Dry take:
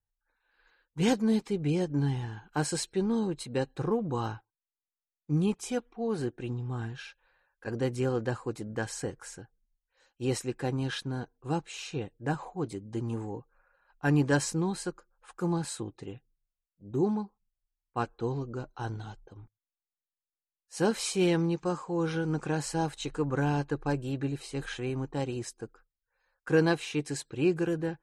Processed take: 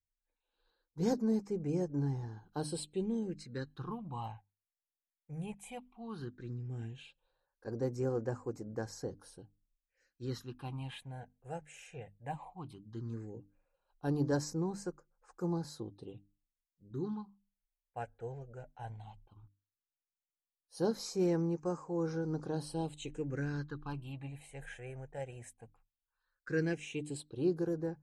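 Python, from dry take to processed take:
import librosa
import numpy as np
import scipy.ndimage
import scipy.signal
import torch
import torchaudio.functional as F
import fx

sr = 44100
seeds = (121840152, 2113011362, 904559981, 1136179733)

y = fx.phaser_stages(x, sr, stages=6, low_hz=290.0, high_hz=3300.0, hz=0.15, feedback_pct=30)
y = fx.peak_eq(y, sr, hz=490.0, db=2.5, octaves=0.77)
y = fx.hum_notches(y, sr, base_hz=50, count=6)
y = y * 10.0 ** (-7.0 / 20.0)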